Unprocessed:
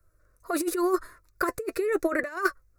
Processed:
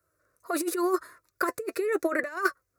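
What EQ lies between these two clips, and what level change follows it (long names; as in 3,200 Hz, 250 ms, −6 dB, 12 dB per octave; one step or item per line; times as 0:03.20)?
high-pass filter 110 Hz 12 dB per octave
low-shelf EQ 170 Hz −8 dB
0.0 dB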